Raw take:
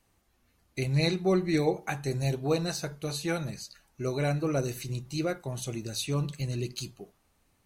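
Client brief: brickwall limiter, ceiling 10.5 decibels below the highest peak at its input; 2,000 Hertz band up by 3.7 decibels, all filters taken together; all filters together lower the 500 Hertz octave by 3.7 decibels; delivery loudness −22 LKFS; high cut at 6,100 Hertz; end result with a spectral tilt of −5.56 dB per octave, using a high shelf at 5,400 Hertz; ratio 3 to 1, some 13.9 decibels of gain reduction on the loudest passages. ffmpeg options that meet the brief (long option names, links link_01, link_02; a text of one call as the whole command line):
ffmpeg -i in.wav -af "lowpass=6100,equalizer=frequency=500:width_type=o:gain=-5,equalizer=frequency=2000:width_type=o:gain=6,highshelf=frequency=5400:gain=-7.5,acompressor=threshold=-42dB:ratio=3,volume=22dB,alimiter=limit=-12.5dB:level=0:latency=1" out.wav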